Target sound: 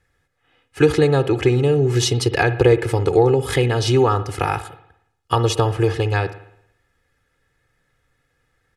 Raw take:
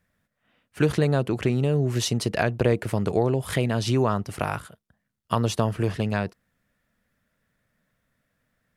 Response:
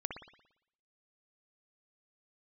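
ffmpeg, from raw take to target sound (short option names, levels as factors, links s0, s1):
-filter_complex "[0:a]lowpass=10000,aecho=1:1:2.4:0.94,asplit=2[s0][s1];[1:a]atrim=start_sample=2205[s2];[s1][s2]afir=irnorm=-1:irlink=0,volume=0.447[s3];[s0][s3]amix=inputs=2:normalize=0,volume=1.19"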